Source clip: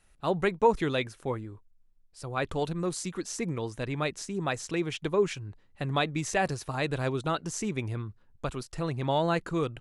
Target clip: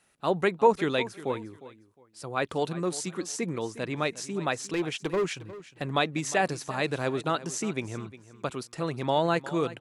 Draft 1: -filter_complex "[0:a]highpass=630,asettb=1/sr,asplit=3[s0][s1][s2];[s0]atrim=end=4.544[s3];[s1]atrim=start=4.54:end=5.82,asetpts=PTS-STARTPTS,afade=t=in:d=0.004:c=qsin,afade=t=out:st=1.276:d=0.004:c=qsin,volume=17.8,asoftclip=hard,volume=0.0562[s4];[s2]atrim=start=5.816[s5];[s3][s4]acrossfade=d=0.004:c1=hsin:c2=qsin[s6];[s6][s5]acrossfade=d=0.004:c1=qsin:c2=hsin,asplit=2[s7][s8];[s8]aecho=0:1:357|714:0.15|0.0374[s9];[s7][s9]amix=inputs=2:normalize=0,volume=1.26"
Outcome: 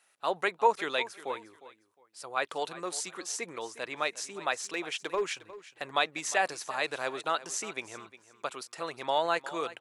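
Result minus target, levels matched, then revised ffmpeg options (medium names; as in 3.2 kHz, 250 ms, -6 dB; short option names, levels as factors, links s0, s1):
125 Hz band -17.5 dB
-filter_complex "[0:a]highpass=170,asettb=1/sr,asplit=3[s0][s1][s2];[s0]atrim=end=4.544[s3];[s1]atrim=start=4.54:end=5.82,asetpts=PTS-STARTPTS,afade=t=in:d=0.004:c=qsin,afade=t=out:st=1.276:d=0.004:c=qsin,volume=17.8,asoftclip=hard,volume=0.0562[s4];[s2]atrim=start=5.816[s5];[s3][s4]acrossfade=d=0.004:c1=hsin:c2=qsin[s6];[s6][s5]acrossfade=d=0.004:c1=qsin:c2=hsin,asplit=2[s7][s8];[s8]aecho=0:1:357|714:0.15|0.0374[s9];[s7][s9]amix=inputs=2:normalize=0,volume=1.26"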